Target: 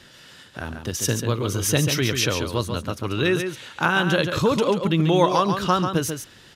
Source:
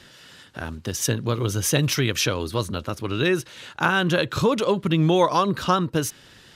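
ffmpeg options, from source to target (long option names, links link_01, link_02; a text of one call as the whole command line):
ffmpeg -i in.wav -af "aecho=1:1:140:0.447" out.wav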